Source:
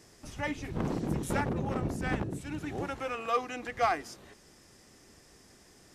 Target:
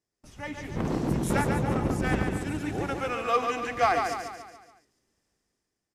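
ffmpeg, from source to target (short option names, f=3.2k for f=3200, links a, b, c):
-filter_complex "[0:a]agate=range=-23dB:threshold=-50dB:ratio=16:detection=peak,dynaudnorm=f=100:g=13:m=10.5dB,asplit=2[a][b];[b]aecho=0:1:142|284|426|568|710|852:0.562|0.276|0.135|0.0662|0.0324|0.0159[c];[a][c]amix=inputs=2:normalize=0,volume=-6.5dB"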